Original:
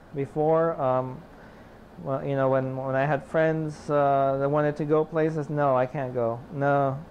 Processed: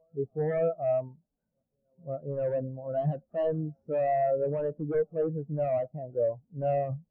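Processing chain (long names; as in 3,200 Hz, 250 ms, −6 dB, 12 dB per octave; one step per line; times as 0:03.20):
backwards echo 536 ms −22.5 dB
wave folding −21 dBFS
every bin expanded away from the loudest bin 2.5 to 1
level +2.5 dB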